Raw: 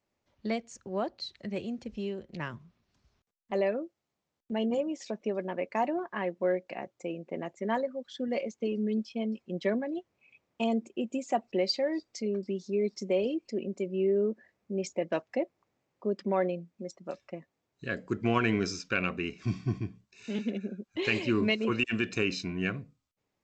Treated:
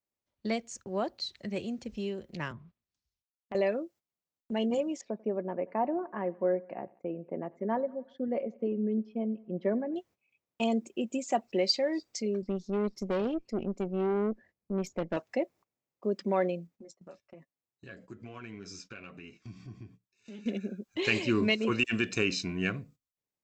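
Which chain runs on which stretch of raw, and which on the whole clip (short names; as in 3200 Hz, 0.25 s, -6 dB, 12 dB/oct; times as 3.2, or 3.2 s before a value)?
2.51–3.55 treble ducked by the level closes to 2100 Hz, closed at -43.5 dBFS + compressor 4:1, threshold -44 dBFS + three-band expander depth 70%
5.01–9.96 LPF 1100 Hz + feedback echo 92 ms, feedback 60%, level -24 dB
12.42–15.17 LPF 3400 Hz 6 dB/oct + low shelf 240 Hz +10.5 dB + tube stage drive 25 dB, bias 0.75
16.67–20.46 high shelf 3300 Hz -3 dB + compressor 3:1, threshold -42 dBFS + flange 1.2 Hz, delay 6.5 ms, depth 4.3 ms, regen -34%
whole clip: gate -54 dBFS, range -15 dB; high shelf 7100 Hz +11.5 dB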